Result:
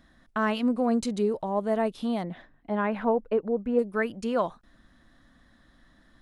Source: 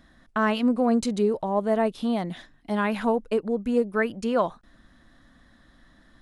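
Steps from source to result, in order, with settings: 2.23–3.79 EQ curve 340 Hz 0 dB, 520 Hz +4 dB, 2100 Hz -2 dB, 7400 Hz -20 dB; gain -3 dB

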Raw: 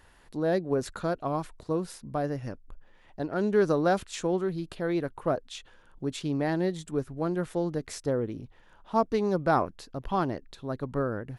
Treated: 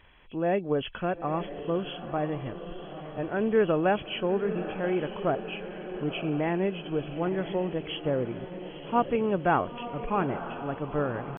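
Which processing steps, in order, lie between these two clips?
nonlinear frequency compression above 2100 Hz 4:1; diffused feedback echo 0.942 s, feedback 57%, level -10.5 dB; pitch shift +1 st

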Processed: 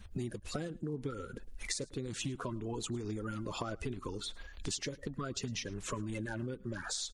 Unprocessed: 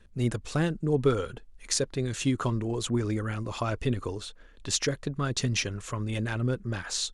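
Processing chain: bin magnitudes rounded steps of 30 dB; compressor 16:1, threshold -40 dBFS, peak gain reduction 22.5 dB; echo 0.107 s -22.5 dB; gain +5 dB

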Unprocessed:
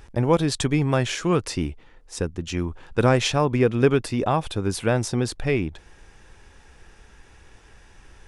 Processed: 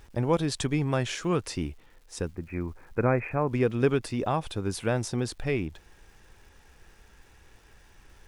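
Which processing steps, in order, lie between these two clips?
2.35–3.49 Chebyshev low-pass 2500 Hz, order 8; crackle 540/s -48 dBFS; gain -5.5 dB

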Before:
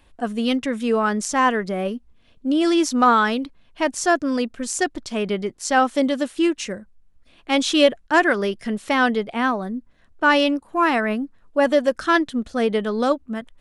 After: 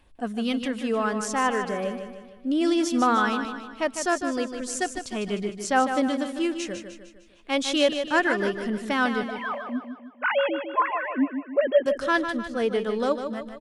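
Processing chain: 9.23–11.86 sine-wave speech; phaser 0.35 Hz, delay 2.4 ms, feedback 23%; feedback echo 0.152 s, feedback 48%, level -8 dB; gain -5.5 dB

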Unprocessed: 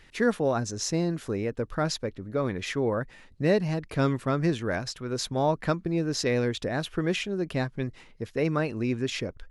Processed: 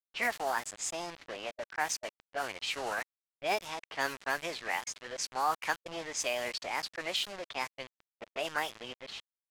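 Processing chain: ending faded out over 0.84 s; BPF 780–5800 Hz; bit-crush 7-bit; formant shift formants +4 st; low-pass opened by the level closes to 2000 Hz, open at -29 dBFS

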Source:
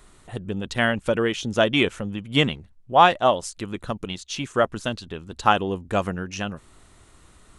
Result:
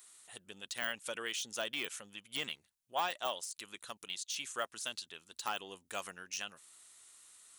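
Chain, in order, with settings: de-esser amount 80%; differentiator; gain +1.5 dB

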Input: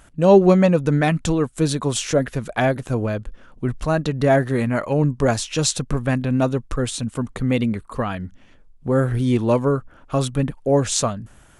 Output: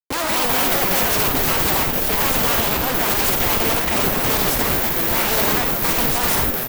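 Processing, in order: spectral contrast lowered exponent 0.44; HPF 770 Hz 6 dB/oct; bell 5700 Hz -4.5 dB 2.8 oct; in parallel at +2 dB: compressor 4:1, threshold -34 dBFS, peak gain reduction 18 dB; on the sum: Schmitt trigger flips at -25 dBFS; careless resampling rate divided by 3×, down none, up zero stuff; on a send: frequency-shifting echo 82 ms, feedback 51%, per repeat +130 Hz, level -6 dB; on the sum: echoes that change speed 0.268 s, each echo -5 st, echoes 2; speed mistake 45 rpm record played at 78 rpm

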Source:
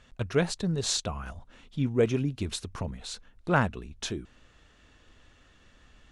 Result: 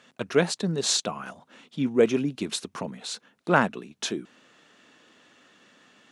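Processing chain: HPF 180 Hz 24 dB/oct; gain +4.5 dB

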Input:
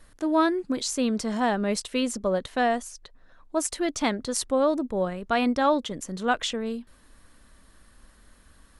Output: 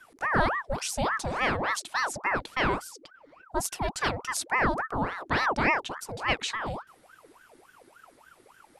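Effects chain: ring modulator with a swept carrier 920 Hz, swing 70%, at 3.5 Hz

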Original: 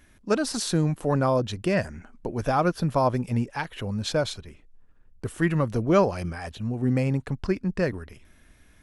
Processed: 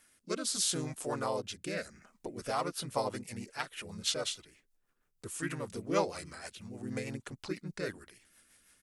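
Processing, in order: rotary speaker horn 0.75 Hz, later 6.3 Hz, at 2.03; RIAA curve recording; harmoniser -3 st -1 dB; gain -9 dB

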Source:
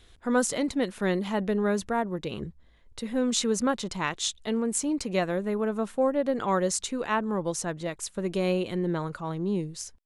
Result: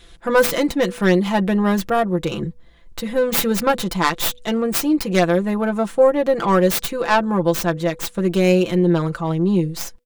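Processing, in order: tracing distortion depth 0.46 ms; comb 5.9 ms, depth 69%; de-hum 245.2 Hz, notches 2; gain +8 dB

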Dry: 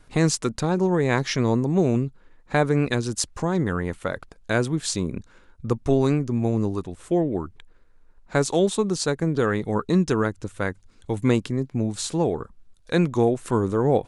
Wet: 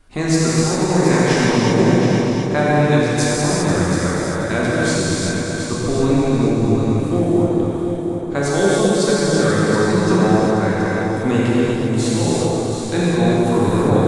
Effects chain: 10.12–10.58 synth low-pass 760 Hz, resonance Q 4.6; multi-head echo 0.241 s, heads all three, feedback 41%, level -10 dB; non-linear reverb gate 0.43 s flat, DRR -7.5 dB; gain -2 dB

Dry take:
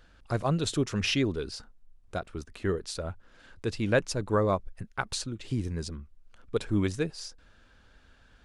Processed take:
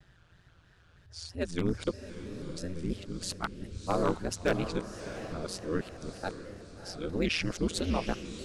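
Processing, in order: whole clip reversed; ring modulator 87 Hz; wavefolder -18 dBFS; on a send: diffused feedback echo 0.669 s, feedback 46%, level -10 dB; on the sum: shaped vibrato square 3.1 Hz, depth 100 cents

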